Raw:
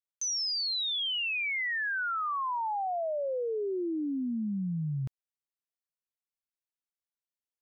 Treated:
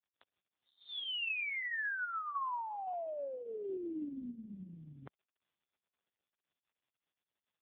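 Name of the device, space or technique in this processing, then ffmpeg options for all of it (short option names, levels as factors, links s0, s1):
voicemail: -af "highpass=370,lowpass=2800,acompressor=threshold=0.0178:ratio=8,volume=1.41" -ar 8000 -c:a libopencore_amrnb -b:a 4750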